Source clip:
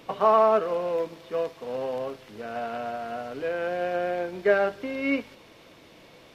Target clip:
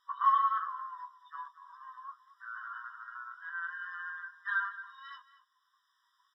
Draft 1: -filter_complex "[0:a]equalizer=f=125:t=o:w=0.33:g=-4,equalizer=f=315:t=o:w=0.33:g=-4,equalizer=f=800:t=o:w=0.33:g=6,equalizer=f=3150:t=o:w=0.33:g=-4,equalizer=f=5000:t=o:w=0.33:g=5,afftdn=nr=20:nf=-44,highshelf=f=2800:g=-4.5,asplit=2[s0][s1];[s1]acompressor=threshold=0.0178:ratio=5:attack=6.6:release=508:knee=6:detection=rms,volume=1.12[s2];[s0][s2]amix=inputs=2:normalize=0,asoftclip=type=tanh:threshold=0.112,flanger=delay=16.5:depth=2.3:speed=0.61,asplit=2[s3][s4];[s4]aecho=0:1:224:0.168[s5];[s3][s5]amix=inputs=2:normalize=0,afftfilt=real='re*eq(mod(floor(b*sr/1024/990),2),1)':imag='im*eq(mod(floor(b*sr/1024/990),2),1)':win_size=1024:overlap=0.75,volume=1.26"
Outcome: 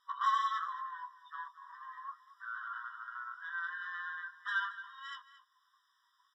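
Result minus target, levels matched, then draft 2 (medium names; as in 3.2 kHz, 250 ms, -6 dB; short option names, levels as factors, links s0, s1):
saturation: distortion +13 dB; compression: peak gain reduction -7.5 dB
-filter_complex "[0:a]equalizer=f=125:t=o:w=0.33:g=-4,equalizer=f=315:t=o:w=0.33:g=-4,equalizer=f=800:t=o:w=0.33:g=6,equalizer=f=3150:t=o:w=0.33:g=-4,equalizer=f=5000:t=o:w=0.33:g=5,afftdn=nr=20:nf=-44,highshelf=f=2800:g=-4.5,asplit=2[s0][s1];[s1]acompressor=threshold=0.00596:ratio=5:attack=6.6:release=508:knee=6:detection=rms,volume=1.12[s2];[s0][s2]amix=inputs=2:normalize=0,asoftclip=type=tanh:threshold=0.355,flanger=delay=16.5:depth=2.3:speed=0.61,asplit=2[s3][s4];[s4]aecho=0:1:224:0.168[s5];[s3][s5]amix=inputs=2:normalize=0,afftfilt=real='re*eq(mod(floor(b*sr/1024/990),2),1)':imag='im*eq(mod(floor(b*sr/1024/990),2),1)':win_size=1024:overlap=0.75,volume=1.26"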